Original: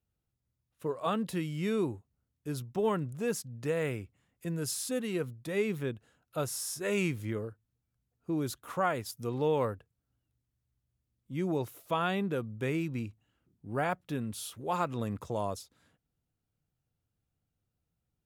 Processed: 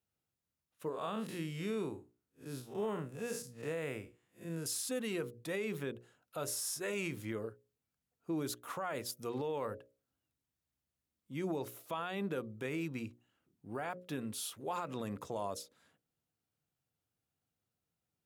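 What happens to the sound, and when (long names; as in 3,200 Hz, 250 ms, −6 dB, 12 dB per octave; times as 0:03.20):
0:00.89–0:04.66: spectrum smeared in time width 124 ms
whole clip: high-pass filter 260 Hz 6 dB per octave; mains-hum notches 60/120/180/240/300/360/420/480/540/600 Hz; brickwall limiter −28.5 dBFS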